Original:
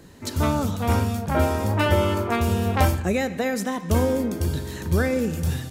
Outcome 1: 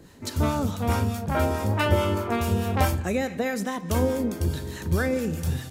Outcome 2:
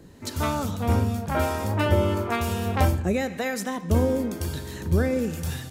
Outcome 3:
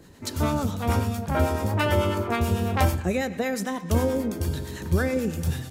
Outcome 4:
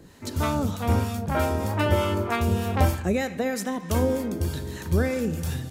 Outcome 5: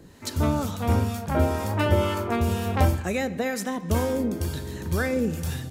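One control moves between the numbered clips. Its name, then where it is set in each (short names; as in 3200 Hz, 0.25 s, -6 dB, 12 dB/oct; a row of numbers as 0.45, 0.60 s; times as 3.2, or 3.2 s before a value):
harmonic tremolo, rate: 4.7, 1, 9.1, 3.2, 2.1 Hz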